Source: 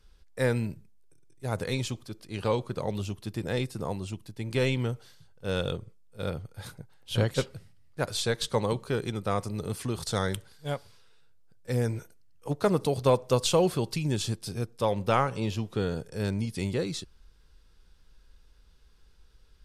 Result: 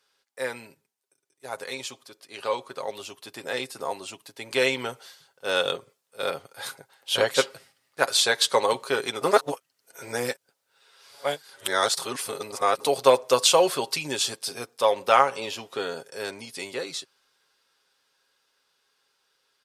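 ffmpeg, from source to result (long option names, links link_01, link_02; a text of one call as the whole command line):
ffmpeg -i in.wav -filter_complex "[0:a]asplit=3[link_01][link_02][link_03];[link_01]atrim=end=9.212[link_04];[link_02]atrim=start=9.208:end=12.802,asetpts=PTS-STARTPTS,areverse[link_05];[link_03]atrim=start=12.798[link_06];[link_04][link_05]acrossfade=duration=0.004:curve1=hsin:curve2=hsin[link_07];[link_07][link_06]acrossfade=duration=0.004:curve1=hsin:curve2=hsin,highpass=580,aecho=1:1:7.4:0.45,dynaudnorm=framelen=380:gausssize=21:maxgain=11dB" out.wav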